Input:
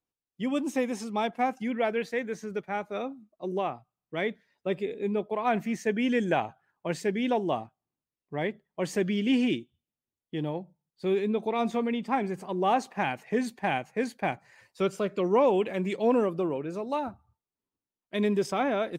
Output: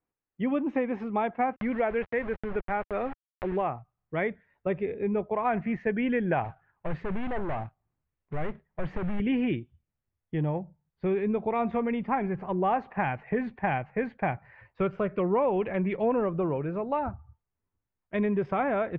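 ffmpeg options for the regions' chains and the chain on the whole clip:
-filter_complex "[0:a]asettb=1/sr,asplit=3[a][b][c];[a]atrim=end=1.564[d];[b]atrim=start=1.56:end=3.62,asetpts=PTS-STARTPTS,afade=t=in:d=0.004:c=qsin,afade=t=out:st=2.056:d=0.004:c=qsin,lowpass=4.4k,aeval=exprs='val(0)*gte(abs(val(0)),0.0112)':c=same,acompressor=mode=upward:threshold=-33dB:ratio=2.5:attack=3.2:release=140:knee=2.83:detection=peak[e];[c]atrim=start=3.616[f];[d][e]acrossfade=d=0.004:c1=hsin:c2=qsin[g];[g][f]acrossfade=d=0.004:c1=qsin:c2=hsin,asettb=1/sr,asplit=3[h][i][j];[h]atrim=end=6.444[k];[i]atrim=start=6.44:end=9.2,asetpts=PTS-STARTPTS,afade=t=in:d=0.004:c=qsin,afade=t=out:st=2.756:d=0.004:c=qsin,acrusher=bits=2:mode=log:mix=0:aa=0.000001,asoftclip=type=hard:threshold=-33dB[l];[j]atrim=start=9.196[m];[k][l]acrossfade=d=0.004:c1=hsin:c2=qsin[n];[n][m]acrossfade=d=0.004:c1=qsin:c2=hsin,lowpass=f=2.2k:w=0.5412,lowpass=f=2.2k:w=1.3066,asubboost=boost=7:cutoff=94,acompressor=threshold=-29dB:ratio=2.5,volume=4.5dB"

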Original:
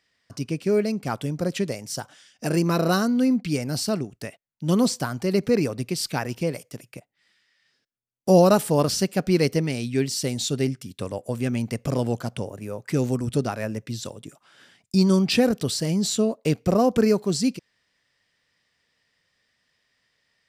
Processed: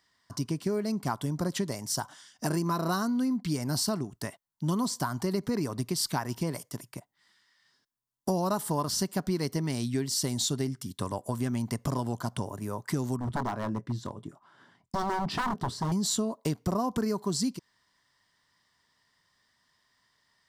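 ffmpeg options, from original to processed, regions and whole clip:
-filter_complex "[0:a]asettb=1/sr,asplit=3[a][b][c];[a]atrim=end=13.164[d];[b]atrim=start=13.16:end=15.92,asetpts=PTS-STARTPTS,afade=t=in:d=0.004:c=qsin,afade=t=out:st=2.756:d=0.004:c=qsin,lowpass=f=1k:p=1,asplit=2[e][f];[f]adelay=24,volume=-13dB[g];[e][g]amix=inputs=2:normalize=0,atrim=end_sample=121716,aeval=exprs='0.0708*(abs(mod(val(0)/0.0708+3,4)-2)-1)':c=same[h];[c]atrim=start=15.916[i];[d][h]acrossfade=d=0.004:c1=hsin:c2=qsin[j];[j][i]acrossfade=d=0.004:c1=qsin:c2=hsin,equalizer=f=500:t=o:w=0.33:g=-9,equalizer=f=1k:t=o:w=0.33:g=11,equalizer=f=2.5k:t=o:w=0.33:g=-11,acompressor=threshold=-26dB:ratio=6,highshelf=f=8.4k:g=4.5"

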